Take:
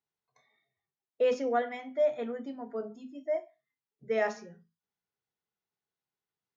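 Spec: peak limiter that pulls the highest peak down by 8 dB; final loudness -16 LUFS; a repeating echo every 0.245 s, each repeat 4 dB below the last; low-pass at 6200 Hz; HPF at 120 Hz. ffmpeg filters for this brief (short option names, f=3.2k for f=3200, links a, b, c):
-af "highpass=120,lowpass=6.2k,alimiter=level_in=2dB:limit=-24dB:level=0:latency=1,volume=-2dB,aecho=1:1:245|490|735|980|1225|1470|1715|1960|2205:0.631|0.398|0.25|0.158|0.0994|0.0626|0.0394|0.0249|0.0157,volume=19.5dB"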